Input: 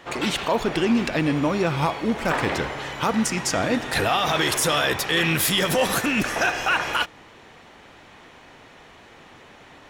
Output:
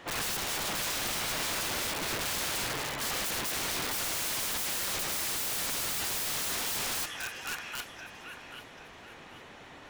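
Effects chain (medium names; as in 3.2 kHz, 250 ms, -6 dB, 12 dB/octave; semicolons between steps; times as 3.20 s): on a send: feedback echo behind a high-pass 787 ms, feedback 34%, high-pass 1.5 kHz, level -10 dB; on the sum: dynamic bell 300 Hz, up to +6 dB, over -35 dBFS, Q 1; integer overflow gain 25.5 dB; trim -2.5 dB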